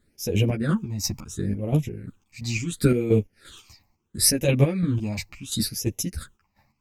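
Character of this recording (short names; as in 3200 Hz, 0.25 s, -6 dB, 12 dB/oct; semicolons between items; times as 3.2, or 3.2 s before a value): phasing stages 8, 0.72 Hz, lowest notch 430–1400 Hz; chopped level 2.9 Hz, depth 60%, duty 45%; a shimmering, thickened sound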